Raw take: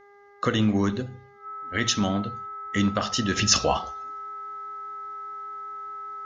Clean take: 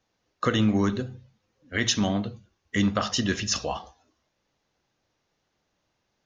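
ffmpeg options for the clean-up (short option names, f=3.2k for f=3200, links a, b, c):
-af "bandreject=f=405:t=h:w=4,bandreject=f=810:t=h:w=4,bandreject=f=1.215k:t=h:w=4,bandreject=f=1.62k:t=h:w=4,bandreject=f=2.025k:t=h:w=4,bandreject=f=1.3k:w=30,asetnsamples=n=441:p=0,asendcmd='3.36 volume volume -7dB',volume=0dB"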